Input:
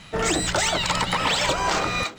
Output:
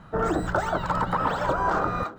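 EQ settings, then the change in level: resonant high shelf 1800 Hz -6.5 dB, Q 3; bell 6800 Hz -15 dB 2.8 oct; 0.0 dB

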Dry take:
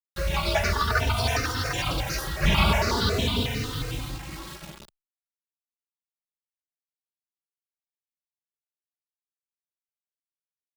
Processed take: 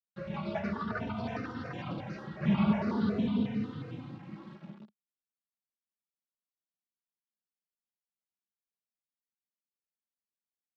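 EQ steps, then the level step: HPF 120 Hz 24 dB/oct; tape spacing loss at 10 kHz 41 dB; bell 210 Hz +15 dB 0.47 oct; -7.5 dB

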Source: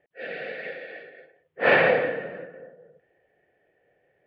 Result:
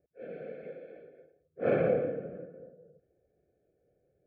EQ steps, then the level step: running mean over 47 samples; bell 68 Hz +7 dB 0.43 oct; low shelf 130 Hz +3.5 dB; -1.0 dB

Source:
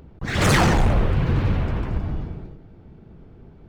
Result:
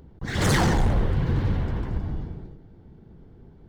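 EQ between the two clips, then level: thirty-one-band EQ 630 Hz -4 dB, 1250 Hz -5 dB, 2500 Hz -8 dB; -3.0 dB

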